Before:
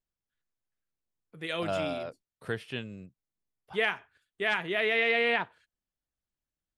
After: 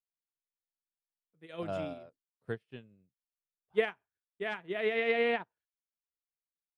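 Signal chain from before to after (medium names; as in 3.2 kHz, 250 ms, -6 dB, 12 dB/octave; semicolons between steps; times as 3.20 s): tilt shelf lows +5 dB, about 1.2 kHz; upward expansion 2.5:1, over -41 dBFS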